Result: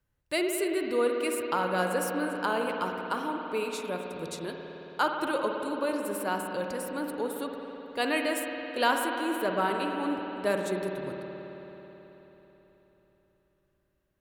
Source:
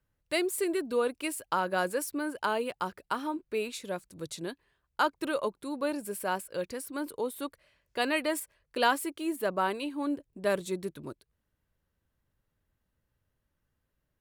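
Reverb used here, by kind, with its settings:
spring reverb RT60 4 s, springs 54 ms, chirp 50 ms, DRR 2 dB

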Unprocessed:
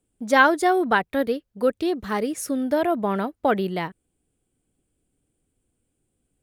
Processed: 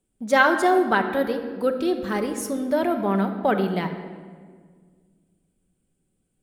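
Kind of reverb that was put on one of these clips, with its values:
rectangular room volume 2,300 cubic metres, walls mixed, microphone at 1.1 metres
level −1.5 dB

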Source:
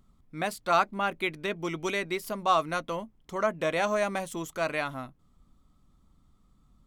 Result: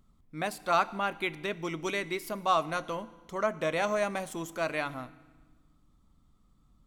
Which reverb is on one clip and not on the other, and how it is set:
feedback delay network reverb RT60 1.3 s, low-frequency decay 1.45×, high-frequency decay 0.95×, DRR 15.5 dB
level −2 dB

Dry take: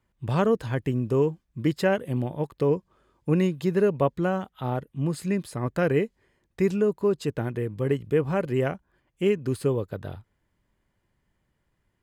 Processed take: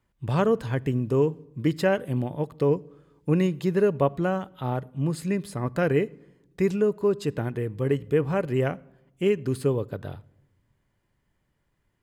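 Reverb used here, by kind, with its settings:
rectangular room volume 3,400 cubic metres, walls furnished, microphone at 0.3 metres

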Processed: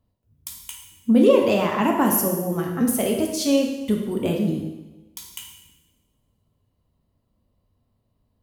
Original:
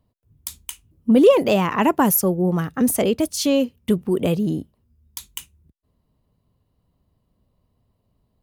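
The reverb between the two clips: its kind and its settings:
coupled-rooms reverb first 1 s, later 2.5 s, from −27 dB, DRR 0 dB
level −5 dB

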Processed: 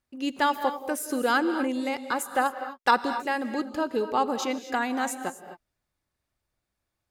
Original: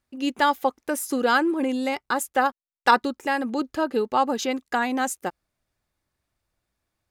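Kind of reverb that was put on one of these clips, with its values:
reverb whose tail is shaped and stops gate 280 ms rising, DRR 9.5 dB
level −3.5 dB

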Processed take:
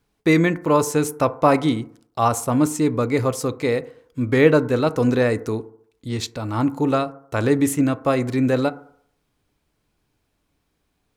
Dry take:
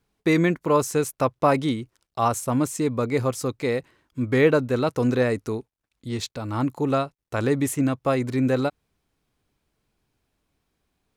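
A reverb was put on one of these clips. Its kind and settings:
feedback delay network reverb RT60 0.63 s, low-frequency decay 0.8×, high-frequency decay 0.3×, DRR 12.5 dB
level +3 dB

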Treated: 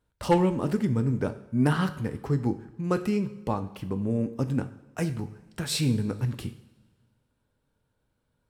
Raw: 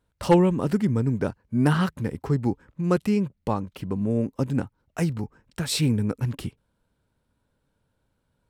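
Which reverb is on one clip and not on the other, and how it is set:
coupled-rooms reverb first 0.56 s, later 1.8 s, from −16 dB, DRR 8.5 dB
level −3 dB

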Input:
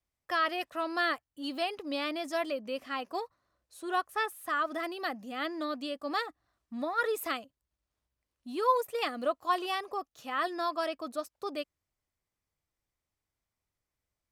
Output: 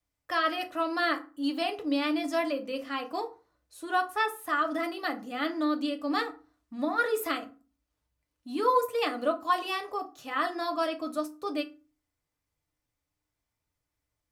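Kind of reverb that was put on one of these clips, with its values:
feedback delay network reverb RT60 0.34 s, low-frequency decay 1.4×, high-frequency decay 0.65×, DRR 3.5 dB
level +1 dB

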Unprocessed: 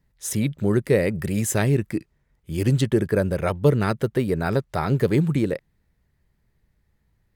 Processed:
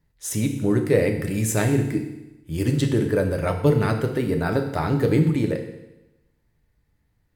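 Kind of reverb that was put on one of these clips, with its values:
feedback delay network reverb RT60 0.97 s, low-frequency decay 1.05×, high-frequency decay 1×, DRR 3.5 dB
level −1.5 dB

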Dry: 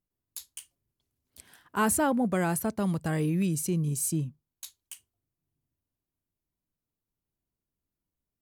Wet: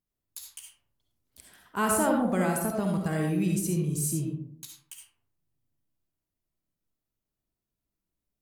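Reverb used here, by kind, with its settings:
comb and all-pass reverb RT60 0.69 s, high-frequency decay 0.4×, pre-delay 25 ms, DRR 0.5 dB
level −2 dB

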